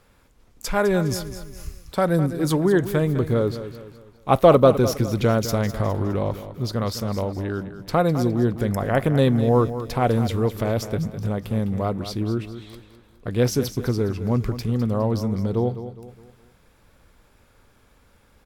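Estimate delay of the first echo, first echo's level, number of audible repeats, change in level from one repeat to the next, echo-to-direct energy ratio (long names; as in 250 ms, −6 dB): 206 ms, −12.0 dB, 3, −7.5 dB, −11.0 dB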